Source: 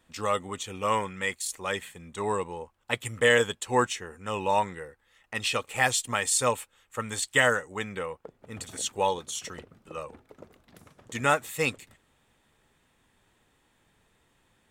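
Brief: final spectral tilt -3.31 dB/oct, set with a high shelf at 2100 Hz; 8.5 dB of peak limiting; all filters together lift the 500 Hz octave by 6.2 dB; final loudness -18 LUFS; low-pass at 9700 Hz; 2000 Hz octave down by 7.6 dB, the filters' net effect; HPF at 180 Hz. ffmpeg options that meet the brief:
-af "highpass=180,lowpass=9.7k,equalizer=f=500:t=o:g=7.5,equalizer=f=2k:t=o:g=-7,highshelf=f=2.1k:g=-5.5,volume=12.5dB,alimiter=limit=-4dB:level=0:latency=1"

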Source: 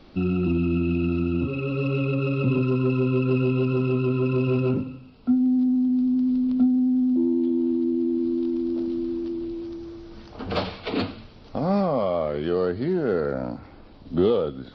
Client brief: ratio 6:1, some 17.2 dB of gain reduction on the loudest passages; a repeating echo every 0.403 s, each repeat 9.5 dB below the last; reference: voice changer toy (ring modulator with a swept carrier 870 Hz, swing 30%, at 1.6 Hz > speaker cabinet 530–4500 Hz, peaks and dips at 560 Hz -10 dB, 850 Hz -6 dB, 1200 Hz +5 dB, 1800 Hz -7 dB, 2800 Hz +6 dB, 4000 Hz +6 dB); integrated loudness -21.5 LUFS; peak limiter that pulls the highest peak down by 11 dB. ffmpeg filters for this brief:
-af "acompressor=threshold=-35dB:ratio=6,alimiter=level_in=9dB:limit=-24dB:level=0:latency=1,volume=-9dB,aecho=1:1:403|806|1209|1612:0.335|0.111|0.0365|0.012,aeval=exprs='val(0)*sin(2*PI*870*n/s+870*0.3/1.6*sin(2*PI*1.6*n/s))':c=same,highpass=530,equalizer=f=560:t=q:w=4:g=-10,equalizer=f=850:t=q:w=4:g=-6,equalizer=f=1.2k:t=q:w=4:g=5,equalizer=f=1.8k:t=q:w=4:g=-7,equalizer=f=2.8k:t=q:w=4:g=6,equalizer=f=4k:t=q:w=4:g=6,lowpass=f=4.5k:w=0.5412,lowpass=f=4.5k:w=1.3066,volume=22dB"

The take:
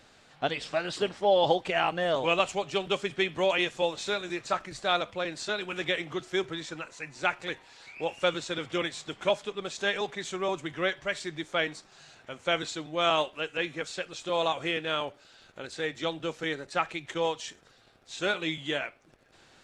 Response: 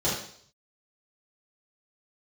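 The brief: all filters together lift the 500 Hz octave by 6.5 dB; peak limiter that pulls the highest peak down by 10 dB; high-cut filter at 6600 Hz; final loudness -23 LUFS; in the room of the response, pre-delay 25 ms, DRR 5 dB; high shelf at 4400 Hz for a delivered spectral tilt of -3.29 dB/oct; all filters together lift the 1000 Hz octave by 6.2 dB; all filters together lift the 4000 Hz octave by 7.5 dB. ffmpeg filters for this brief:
-filter_complex "[0:a]lowpass=6.6k,equalizer=f=500:t=o:g=6,equalizer=f=1k:t=o:g=5.5,equalizer=f=4k:t=o:g=5.5,highshelf=f=4.4k:g=8.5,alimiter=limit=-13dB:level=0:latency=1,asplit=2[a][b];[1:a]atrim=start_sample=2205,adelay=25[c];[b][c]afir=irnorm=-1:irlink=0,volume=-16.5dB[d];[a][d]amix=inputs=2:normalize=0,volume=1.5dB"

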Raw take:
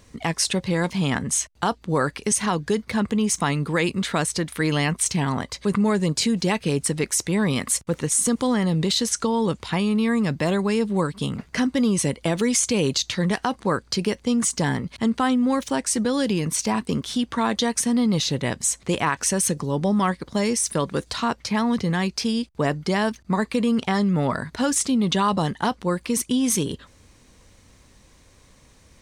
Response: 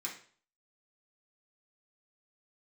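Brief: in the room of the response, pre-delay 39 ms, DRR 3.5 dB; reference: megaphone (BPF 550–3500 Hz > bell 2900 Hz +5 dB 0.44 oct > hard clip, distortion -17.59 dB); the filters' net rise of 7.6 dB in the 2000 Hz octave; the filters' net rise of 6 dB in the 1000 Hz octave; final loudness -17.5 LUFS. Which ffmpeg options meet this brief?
-filter_complex "[0:a]equalizer=f=1k:t=o:g=6,equalizer=f=2k:t=o:g=7,asplit=2[a][b];[1:a]atrim=start_sample=2205,adelay=39[c];[b][c]afir=irnorm=-1:irlink=0,volume=-4dB[d];[a][d]amix=inputs=2:normalize=0,highpass=550,lowpass=3.5k,equalizer=f=2.9k:t=o:w=0.44:g=5,asoftclip=type=hard:threshold=-10.5dB,volume=5dB"

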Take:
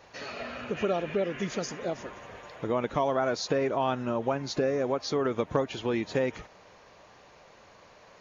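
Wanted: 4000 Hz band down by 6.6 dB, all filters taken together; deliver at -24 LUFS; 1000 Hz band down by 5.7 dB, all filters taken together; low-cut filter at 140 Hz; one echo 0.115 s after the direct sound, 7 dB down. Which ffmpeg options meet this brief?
-af "highpass=140,equalizer=f=1k:t=o:g=-7.5,equalizer=f=4k:t=o:g=-8,aecho=1:1:115:0.447,volume=7.5dB"

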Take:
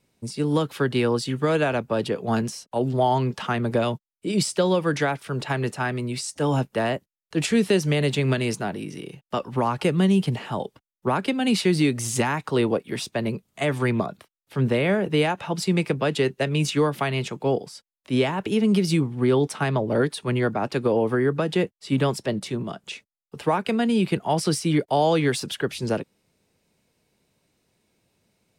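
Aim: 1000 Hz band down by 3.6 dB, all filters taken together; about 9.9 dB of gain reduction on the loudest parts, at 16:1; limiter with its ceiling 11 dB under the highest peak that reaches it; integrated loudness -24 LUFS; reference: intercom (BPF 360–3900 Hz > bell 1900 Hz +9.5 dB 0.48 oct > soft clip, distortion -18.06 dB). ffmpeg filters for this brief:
-af "equalizer=f=1k:t=o:g=-5.5,acompressor=threshold=-26dB:ratio=16,alimiter=level_in=1.5dB:limit=-24dB:level=0:latency=1,volume=-1.5dB,highpass=360,lowpass=3.9k,equalizer=f=1.9k:t=o:w=0.48:g=9.5,asoftclip=threshold=-28.5dB,volume=14.5dB"

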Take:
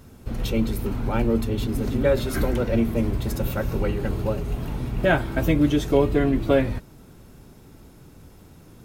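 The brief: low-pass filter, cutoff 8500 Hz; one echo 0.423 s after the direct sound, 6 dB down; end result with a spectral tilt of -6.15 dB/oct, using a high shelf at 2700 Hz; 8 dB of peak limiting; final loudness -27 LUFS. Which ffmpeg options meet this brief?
-af "lowpass=8.5k,highshelf=f=2.7k:g=5,alimiter=limit=-14dB:level=0:latency=1,aecho=1:1:423:0.501,volume=-2dB"

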